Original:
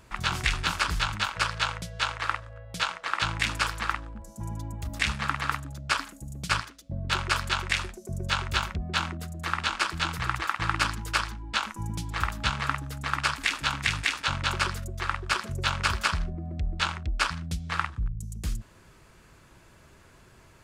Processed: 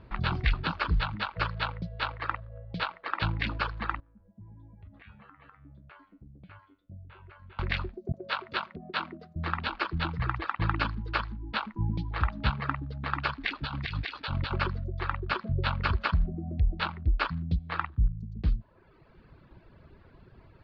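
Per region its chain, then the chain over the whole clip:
0:04.00–0:07.59: low-pass filter 3,000 Hz 24 dB per octave + tuned comb filter 97 Hz, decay 0.36 s, mix 90% + downward compressor 3 to 1, threshold −50 dBFS
0:08.12–0:09.36: noise gate with hold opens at −27 dBFS, closes at −32 dBFS + high-pass filter 320 Hz + notch filter 840 Hz
0:13.53–0:14.51: dynamic equaliser 4,300 Hz, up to +6 dB, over −41 dBFS, Q 1 + downward compressor 4 to 1, threshold −26 dBFS
whole clip: reverb reduction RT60 1.1 s; elliptic low-pass filter 4,400 Hz, stop band 50 dB; tilt shelving filter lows +6.5 dB, about 900 Hz

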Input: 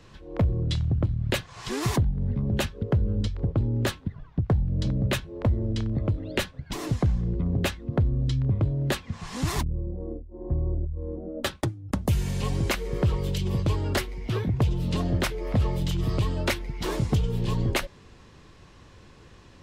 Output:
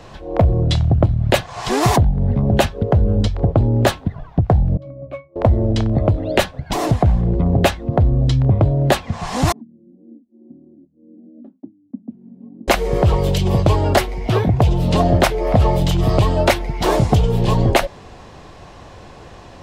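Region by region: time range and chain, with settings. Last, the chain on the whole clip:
0:04.77–0:05.36: downward expander −36 dBFS + high-pass filter 570 Hz 6 dB per octave + resonances in every octave C#, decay 0.21 s
0:06.91–0:07.33: parametric band 6,000 Hz −7.5 dB 0.99 octaves + highs frequency-modulated by the lows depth 0.17 ms
0:09.52–0:12.68: spectral tilt +3.5 dB per octave + log-companded quantiser 6 bits + flat-topped band-pass 240 Hz, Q 3.6
whole clip: parametric band 710 Hz +12.5 dB 0.8 octaves; boost into a limiter +10.5 dB; level −1 dB

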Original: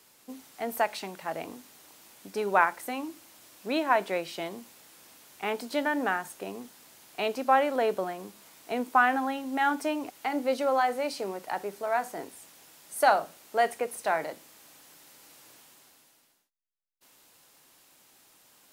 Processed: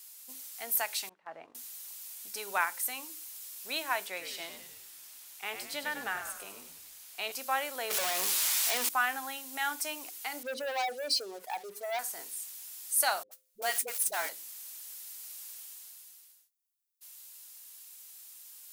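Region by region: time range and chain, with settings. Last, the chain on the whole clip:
0:01.09–0:01.55: low-pass filter 1,300 Hz + noise gate −42 dBFS, range −12 dB
0:04.07–0:07.32: high-shelf EQ 5,200 Hz −7.5 dB + echo with shifted repeats 99 ms, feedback 53%, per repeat −74 Hz, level −8 dB
0:07.90–0:08.89: one scale factor per block 5 bits + mid-hump overdrive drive 34 dB, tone 3,500 Hz, clips at −18.5 dBFS
0:10.43–0:11.99: expanding power law on the bin magnitudes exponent 2 + leveller curve on the samples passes 2
0:13.23–0:14.29: converter with a step at zero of −35 dBFS + noise gate −36 dBFS, range −45 dB + all-pass dispersion highs, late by 74 ms, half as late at 390 Hz
whole clip: first-order pre-emphasis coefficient 0.97; hum removal 104.3 Hz, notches 5; level +8.5 dB

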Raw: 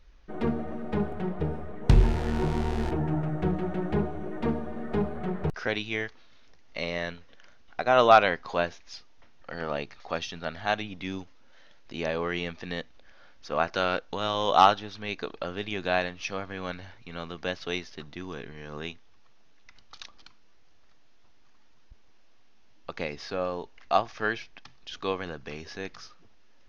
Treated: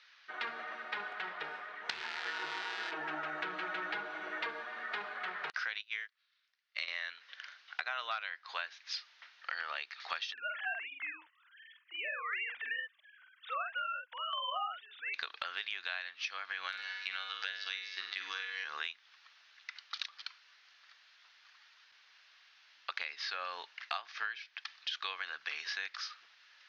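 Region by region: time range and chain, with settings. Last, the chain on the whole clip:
0:02.25–0:04.63: high-pass filter 240 Hz + low-shelf EQ 400 Hz +11 dB + comb filter 6.2 ms, depth 77%
0:05.81–0:06.88: bass and treble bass −10 dB, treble +1 dB + notch filter 850 Hz, Q 6.3 + expander for the loud parts 2.5 to 1, over −45 dBFS
0:10.33–0:15.14: three sine waves on the formant tracks + shaped tremolo saw down 1 Hz, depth 70% + double-tracking delay 47 ms −4 dB
0:16.68–0:18.64: phases set to zero 95.2 Hz + flutter between parallel walls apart 8.3 metres, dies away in 0.49 s + multiband upward and downward compressor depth 70%
whole clip: Chebyshev band-pass filter 1,500–4,500 Hz, order 2; downward compressor 16 to 1, threshold −45 dBFS; level +10.5 dB

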